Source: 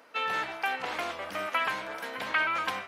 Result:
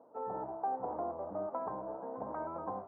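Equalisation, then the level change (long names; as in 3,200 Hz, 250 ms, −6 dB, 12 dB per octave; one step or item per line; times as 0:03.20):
Butterworth low-pass 910 Hz 36 dB per octave
0.0 dB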